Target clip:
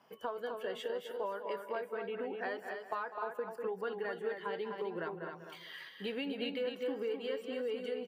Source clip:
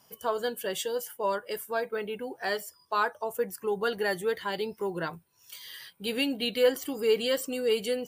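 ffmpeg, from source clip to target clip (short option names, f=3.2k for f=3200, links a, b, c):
-filter_complex "[0:a]acrossover=split=180 3000:gain=0.141 1 0.0794[a][b][c];[a][b][c]amix=inputs=3:normalize=0,asplit=2[d][e];[e]adelay=195,lowpass=f=3.5k:p=1,volume=-12.5dB,asplit=2[f][g];[g]adelay=195,lowpass=f=3.5k:p=1,volume=0.27,asplit=2[h][i];[i]adelay=195,lowpass=f=3.5k:p=1,volume=0.27[j];[f][h][j]amix=inputs=3:normalize=0[k];[d][k]amix=inputs=2:normalize=0,acompressor=threshold=-37dB:ratio=6,asplit=2[l][m];[m]aecho=0:1:255:0.501[n];[l][n]amix=inputs=2:normalize=0,volume=1dB"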